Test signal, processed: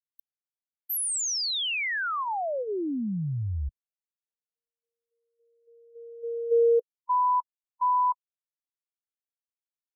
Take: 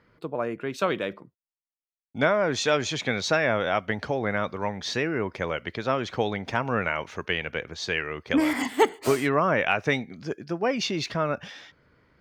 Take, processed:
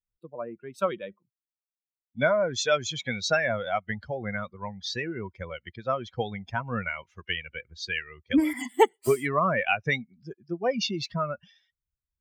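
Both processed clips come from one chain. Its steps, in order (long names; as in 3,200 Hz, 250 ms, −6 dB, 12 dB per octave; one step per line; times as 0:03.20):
spectral dynamics exaggerated over time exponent 2
level +3 dB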